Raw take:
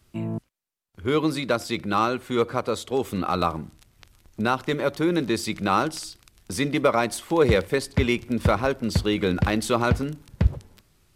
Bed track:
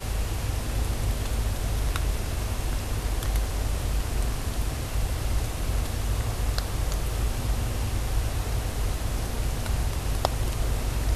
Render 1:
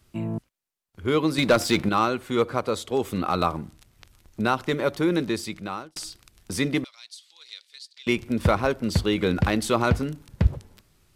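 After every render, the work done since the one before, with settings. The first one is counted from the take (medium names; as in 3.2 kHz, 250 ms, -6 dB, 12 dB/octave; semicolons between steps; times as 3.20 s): 1.38–1.89 s: waveshaping leveller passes 2; 5.13–5.96 s: fade out; 6.84–8.07 s: ladder band-pass 4.7 kHz, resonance 50%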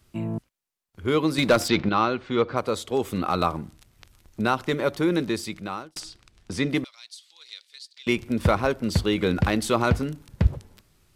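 1.68–2.57 s: low-pass 5.1 kHz 24 dB/octave; 6.00–6.69 s: distance through air 64 m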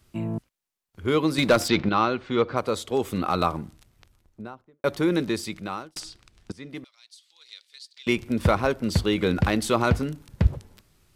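3.57–4.84 s: studio fade out; 6.52–8.08 s: fade in, from -20.5 dB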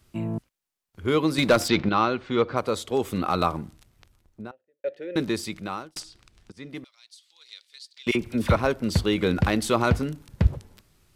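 4.51–5.16 s: vowel filter e; 6.02–6.57 s: compression 2:1, threshold -48 dBFS; 8.11–8.56 s: phase dispersion lows, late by 41 ms, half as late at 1.5 kHz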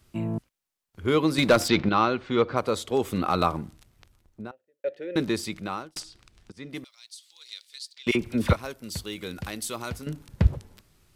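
6.73–7.94 s: treble shelf 5 kHz +10.5 dB; 8.53–10.07 s: pre-emphasis filter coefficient 0.8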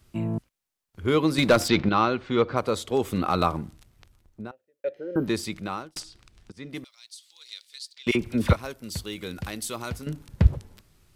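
4.98–5.24 s: spectral replace 1.6–11 kHz before; bass shelf 140 Hz +3 dB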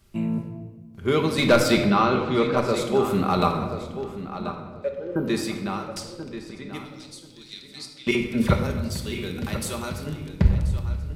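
filtered feedback delay 1034 ms, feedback 18%, low-pass 4.5 kHz, level -11 dB; simulated room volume 1100 m³, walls mixed, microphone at 1.2 m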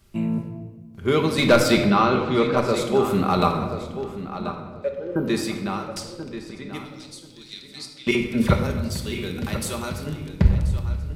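trim +1.5 dB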